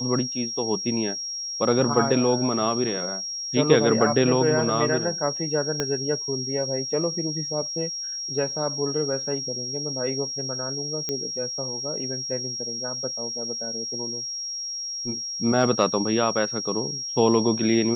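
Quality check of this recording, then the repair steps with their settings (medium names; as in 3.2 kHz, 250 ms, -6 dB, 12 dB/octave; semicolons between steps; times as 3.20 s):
whine 5.6 kHz -29 dBFS
5.80 s: pop -10 dBFS
11.09 s: pop -13 dBFS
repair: de-click; band-stop 5.6 kHz, Q 30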